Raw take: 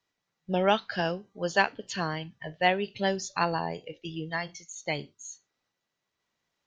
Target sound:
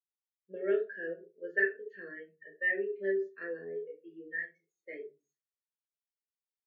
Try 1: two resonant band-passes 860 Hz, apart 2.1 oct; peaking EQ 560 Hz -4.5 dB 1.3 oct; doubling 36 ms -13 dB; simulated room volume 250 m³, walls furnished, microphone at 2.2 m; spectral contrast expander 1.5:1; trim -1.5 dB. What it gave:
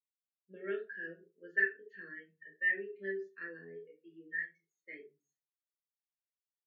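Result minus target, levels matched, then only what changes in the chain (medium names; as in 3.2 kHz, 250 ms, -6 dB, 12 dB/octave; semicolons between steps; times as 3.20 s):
500 Hz band -6.5 dB
change: peaking EQ 560 Hz +5.5 dB 1.3 oct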